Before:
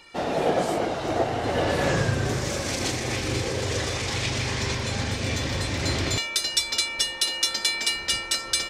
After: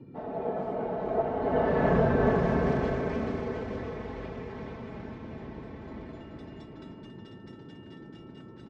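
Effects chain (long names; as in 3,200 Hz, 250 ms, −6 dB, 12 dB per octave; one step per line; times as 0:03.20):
source passing by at 0:02.13, 5 m/s, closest 2.5 metres
low-pass filter 1,100 Hz 12 dB per octave
comb filter 4.6 ms, depth 82%
noise in a band 98–380 Hz −49 dBFS
bouncing-ball delay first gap 430 ms, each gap 0.65×, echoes 5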